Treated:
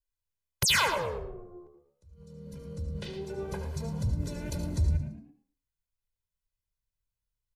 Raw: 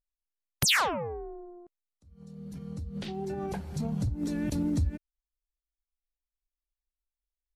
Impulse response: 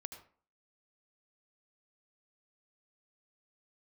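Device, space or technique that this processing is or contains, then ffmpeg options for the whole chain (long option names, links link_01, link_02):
microphone above a desk: -filter_complex "[0:a]adynamicequalizer=threshold=0.00562:dfrequency=340:dqfactor=1.5:tfrequency=340:tqfactor=1.5:attack=5:release=100:ratio=0.375:range=2.5:mode=cutabove:tftype=bell,aecho=1:1:2:0.86[link_01];[1:a]atrim=start_sample=2205[link_02];[link_01][link_02]afir=irnorm=-1:irlink=0,asplit=4[link_03][link_04][link_05][link_06];[link_04]adelay=112,afreqshift=71,volume=-12.5dB[link_07];[link_05]adelay=224,afreqshift=142,volume=-22.4dB[link_08];[link_06]adelay=336,afreqshift=213,volume=-32.3dB[link_09];[link_03][link_07][link_08][link_09]amix=inputs=4:normalize=0,volume=1.5dB"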